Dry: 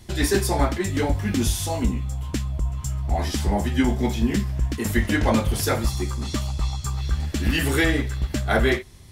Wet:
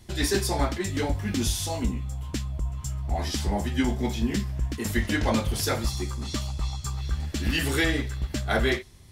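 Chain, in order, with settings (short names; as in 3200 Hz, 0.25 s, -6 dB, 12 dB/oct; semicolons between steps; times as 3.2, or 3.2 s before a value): dynamic EQ 4600 Hz, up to +5 dB, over -40 dBFS, Q 0.89; gain -4.5 dB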